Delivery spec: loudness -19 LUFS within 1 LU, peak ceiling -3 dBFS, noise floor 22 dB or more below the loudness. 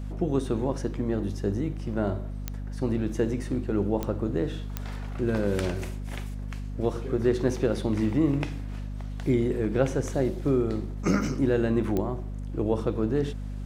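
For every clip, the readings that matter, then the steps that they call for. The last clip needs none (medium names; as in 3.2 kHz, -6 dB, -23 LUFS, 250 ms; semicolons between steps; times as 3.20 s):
clicks found 4; hum 50 Hz; highest harmonic 250 Hz; hum level -31 dBFS; loudness -28.5 LUFS; peak level -10.0 dBFS; loudness target -19.0 LUFS
-> de-click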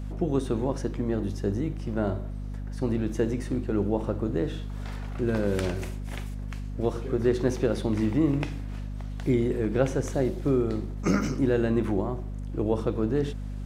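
clicks found 0; hum 50 Hz; highest harmonic 250 Hz; hum level -31 dBFS
-> hum notches 50/100/150/200/250 Hz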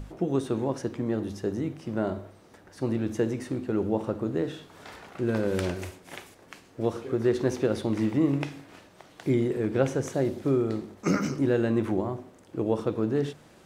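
hum not found; loudness -28.5 LUFS; peak level -10.5 dBFS; loudness target -19.0 LUFS
-> trim +9.5 dB; peak limiter -3 dBFS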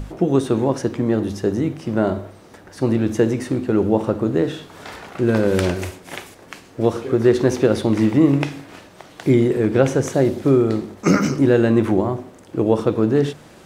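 loudness -19.0 LUFS; peak level -3.0 dBFS; noise floor -45 dBFS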